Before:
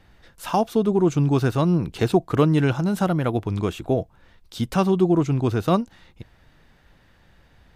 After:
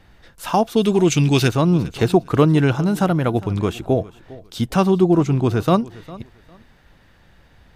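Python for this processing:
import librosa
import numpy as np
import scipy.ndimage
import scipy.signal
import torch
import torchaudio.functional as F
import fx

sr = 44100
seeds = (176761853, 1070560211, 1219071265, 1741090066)

p1 = fx.high_shelf_res(x, sr, hz=1700.0, db=11.0, q=1.5, at=(0.76, 1.47), fade=0.02)
p2 = p1 + fx.echo_feedback(p1, sr, ms=404, feedback_pct=23, wet_db=-20, dry=0)
y = p2 * 10.0 ** (3.5 / 20.0)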